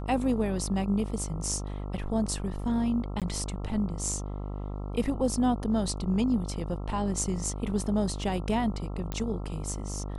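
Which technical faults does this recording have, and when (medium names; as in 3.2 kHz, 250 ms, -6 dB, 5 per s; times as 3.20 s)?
buzz 50 Hz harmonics 27 -35 dBFS
3.20–3.22 s: dropout 17 ms
9.12 s: pop -18 dBFS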